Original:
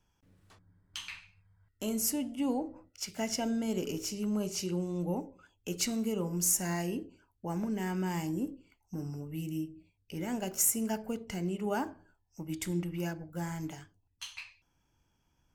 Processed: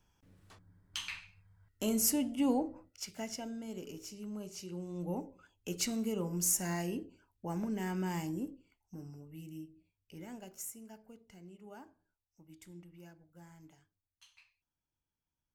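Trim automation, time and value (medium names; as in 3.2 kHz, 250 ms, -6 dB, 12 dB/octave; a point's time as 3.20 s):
2.60 s +1.5 dB
3.52 s -10.5 dB
4.67 s -10.5 dB
5.22 s -2.5 dB
8.15 s -2.5 dB
9.22 s -10.5 dB
10.19 s -10.5 dB
10.85 s -19 dB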